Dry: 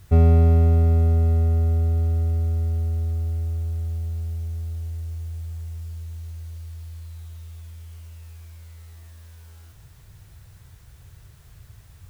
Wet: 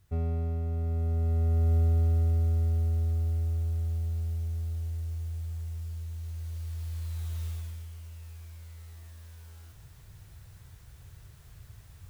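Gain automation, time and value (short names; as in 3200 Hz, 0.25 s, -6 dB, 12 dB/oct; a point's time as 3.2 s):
0.63 s -15.5 dB
1.76 s -3 dB
6.17 s -3 dB
7.46 s +5.5 dB
7.93 s -3 dB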